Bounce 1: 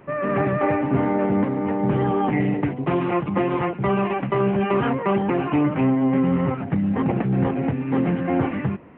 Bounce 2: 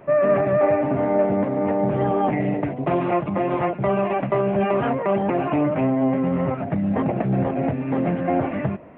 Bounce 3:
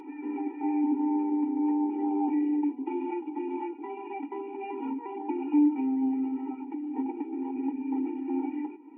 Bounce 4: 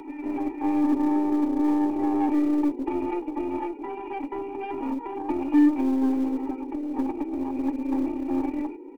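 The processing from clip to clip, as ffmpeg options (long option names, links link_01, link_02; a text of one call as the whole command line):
ffmpeg -i in.wav -af "alimiter=limit=-14dB:level=0:latency=1:release=196,equalizer=frequency=630:width=4:gain=12.5,bandreject=frequency=3000:width=22" out.wav
ffmpeg -i in.wav -filter_complex "[0:a]asplit=3[link_01][link_02][link_03];[link_01]bandpass=frequency=300:width_type=q:width=8,volume=0dB[link_04];[link_02]bandpass=frequency=870:width_type=q:width=8,volume=-6dB[link_05];[link_03]bandpass=frequency=2240:width_type=q:width=8,volume=-9dB[link_06];[link_04][link_05][link_06]amix=inputs=3:normalize=0,acompressor=mode=upward:threshold=-36dB:ratio=2.5,afftfilt=real='re*eq(mod(floor(b*sr/1024/250),2),1)':imag='im*eq(mod(floor(b*sr/1024/250),2),1)':win_size=1024:overlap=0.75,volume=1.5dB" out.wav
ffmpeg -i in.wav -filter_complex "[0:a]aeval=exprs='0.178*(cos(1*acos(clip(val(0)/0.178,-1,1)))-cos(1*PI/2))+0.00794*(cos(8*acos(clip(val(0)/0.178,-1,1)))-cos(8*PI/2))':channel_layout=same,acrossover=split=140|300|1300[link_01][link_02][link_03][link_04];[link_01]acrusher=bits=3:mode=log:mix=0:aa=0.000001[link_05];[link_02]asplit=6[link_06][link_07][link_08][link_09][link_10][link_11];[link_07]adelay=240,afreqshift=56,volume=-13dB[link_12];[link_08]adelay=480,afreqshift=112,volume=-18.7dB[link_13];[link_09]adelay=720,afreqshift=168,volume=-24.4dB[link_14];[link_10]adelay=960,afreqshift=224,volume=-30dB[link_15];[link_11]adelay=1200,afreqshift=280,volume=-35.7dB[link_16];[link_06][link_12][link_13][link_14][link_15][link_16]amix=inputs=6:normalize=0[link_17];[link_05][link_17][link_03][link_04]amix=inputs=4:normalize=0,volume=4dB" out.wav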